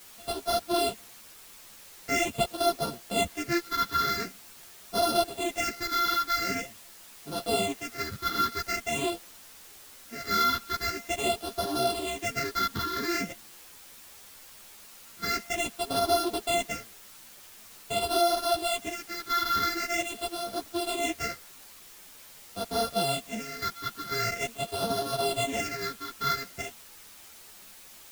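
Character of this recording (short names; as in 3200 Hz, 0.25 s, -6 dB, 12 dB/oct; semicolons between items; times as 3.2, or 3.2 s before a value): a buzz of ramps at a fixed pitch in blocks of 64 samples; phasing stages 6, 0.45 Hz, lowest notch 660–2200 Hz; a quantiser's noise floor 8-bit, dither triangular; a shimmering, thickened sound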